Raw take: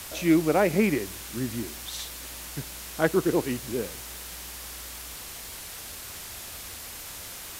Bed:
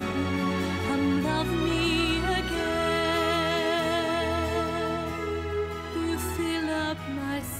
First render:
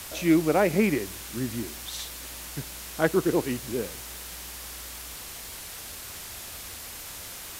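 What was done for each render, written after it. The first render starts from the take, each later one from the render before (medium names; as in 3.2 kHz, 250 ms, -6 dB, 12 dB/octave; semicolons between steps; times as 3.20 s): no audible change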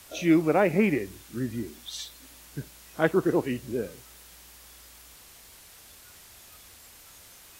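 noise print and reduce 11 dB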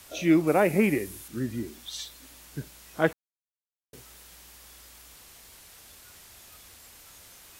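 0.47–1.28 s: peaking EQ 11 kHz +11 dB 0.9 oct; 3.13–3.93 s: mute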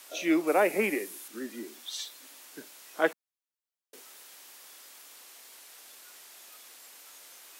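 Bessel high-pass 400 Hz, order 8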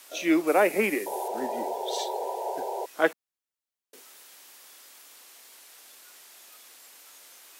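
in parallel at -8 dB: crossover distortion -42 dBFS; 1.06–2.86 s: on the sum: painted sound noise 360–990 Hz -32 dBFS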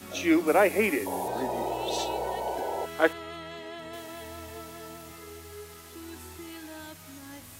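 add bed -15 dB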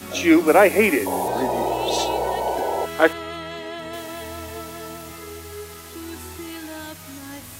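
trim +8 dB; peak limiter -3 dBFS, peak gain reduction 2 dB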